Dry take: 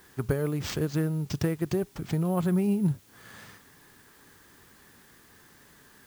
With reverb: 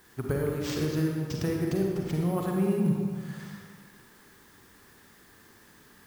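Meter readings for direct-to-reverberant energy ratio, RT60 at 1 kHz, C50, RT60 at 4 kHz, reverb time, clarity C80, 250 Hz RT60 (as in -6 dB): -0.5 dB, 1.9 s, 0.0 dB, 1.2 s, 1.9 s, 2.0 dB, 1.7 s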